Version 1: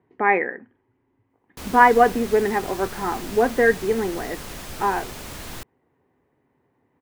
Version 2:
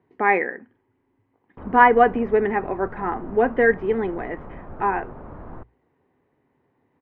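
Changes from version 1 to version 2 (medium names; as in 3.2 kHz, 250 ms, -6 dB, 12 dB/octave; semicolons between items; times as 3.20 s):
background: add low-pass 1.2 kHz 24 dB/octave; master: add hum notches 60/120 Hz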